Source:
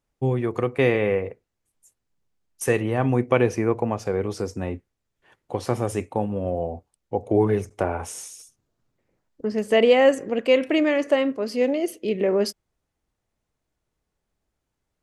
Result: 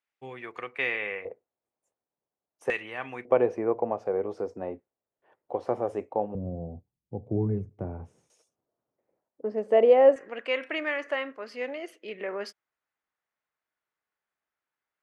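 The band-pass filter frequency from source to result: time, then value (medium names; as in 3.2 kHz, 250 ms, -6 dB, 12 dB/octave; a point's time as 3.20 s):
band-pass filter, Q 1.4
2.2 kHz
from 1.25 s 650 Hz
from 2.70 s 2.3 kHz
from 3.25 s 620 Hz
from 6.35 s 140 Hz
from 8.30 s 620 Hz
from 10.16 s 1.6 kHz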